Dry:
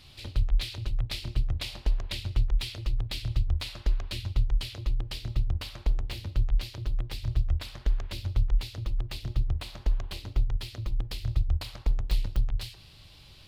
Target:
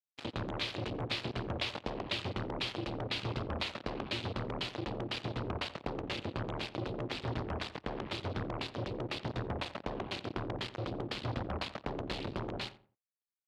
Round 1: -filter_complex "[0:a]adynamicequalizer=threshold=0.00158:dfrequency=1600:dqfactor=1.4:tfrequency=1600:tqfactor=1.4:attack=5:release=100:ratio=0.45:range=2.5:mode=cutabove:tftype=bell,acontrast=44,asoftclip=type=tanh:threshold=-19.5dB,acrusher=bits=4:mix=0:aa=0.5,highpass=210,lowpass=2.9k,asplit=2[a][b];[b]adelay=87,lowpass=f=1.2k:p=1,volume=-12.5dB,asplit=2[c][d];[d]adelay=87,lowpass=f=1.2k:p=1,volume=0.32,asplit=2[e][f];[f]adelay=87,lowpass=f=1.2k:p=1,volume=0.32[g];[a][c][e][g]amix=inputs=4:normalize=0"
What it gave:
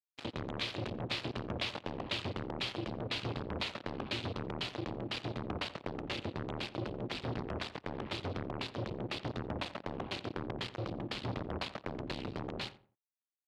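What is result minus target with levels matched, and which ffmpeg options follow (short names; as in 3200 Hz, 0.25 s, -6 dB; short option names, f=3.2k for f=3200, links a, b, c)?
soft clip: distortion +9 dB
-filter_complex "[0:a]adynamicequalizer=threshold=0.00158:dfrequency=1600:dqfactor=1.4:tfrequency=1600:tqfactor=1.4:attack=5:release=100:ratio=0.45:range=2.5:mode=cutabove:tftype=bell,acontrast=44,asoftclip=type=tanh:threshold=-12dB,acrusher=bits=4:mix=0:aa=0.5,highpass=210,lowpass=2.9k,asplit=2[a][b];[b]adelay=87,lowpass=f=1.2k:p=1,volume=-12.5dB,asplit=2[c][d];[d]adelay=87,lowpass=f=1.2k:p=1,volume=0.32,asplit=2[e][f];[f]adelay=87,lowpass=f=1.2k:p=1,volume=0.32[g];[a][c][e][g]amix=inputs=4:normalize=0"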